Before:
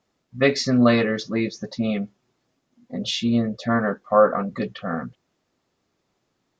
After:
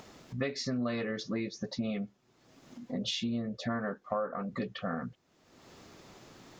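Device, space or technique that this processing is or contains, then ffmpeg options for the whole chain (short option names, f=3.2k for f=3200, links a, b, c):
upward and downward compression: -af "acompressor=mode=upward:threshold=-32dB:ratio=2.5,acompressor=threshold=-28dB:ratio=6,volume=-3dB"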